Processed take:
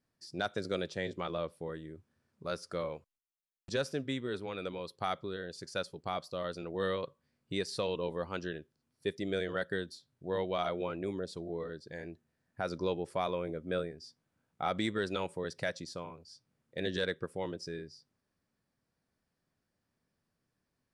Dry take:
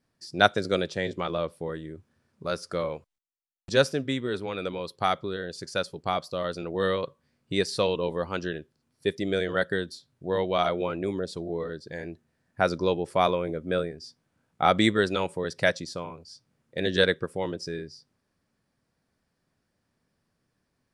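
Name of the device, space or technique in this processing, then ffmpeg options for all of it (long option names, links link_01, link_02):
soft clipper into limiter: -af "asoftclip=type=tanh:threshold=-6dB,alimiter=limit=-14.5dB:level=0:latency=1:release=134,volume=-7dB"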